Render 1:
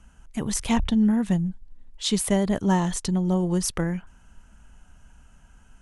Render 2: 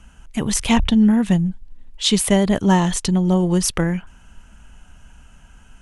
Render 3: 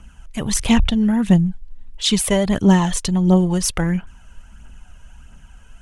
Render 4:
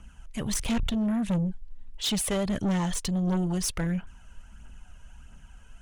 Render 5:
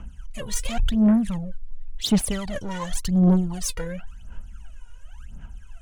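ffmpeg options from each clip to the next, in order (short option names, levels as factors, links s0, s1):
-af "equalizer=f=2800:t=o:w=0.89:g=4.5,volume=2"
-af "aphaser=in_gain=1:out_gain=1:delay=2.1:decay=0.44:speed=1.5:type=triangular,volume=0.891"
-af "asoftclip=type=tanh:threshold=0.133,volume=0.531"
-af "aphaser=in_gain=1:out_gain=1:delay=2.1:decay=0.79:speed=0.92:type=sinusoidal,volume=0.708"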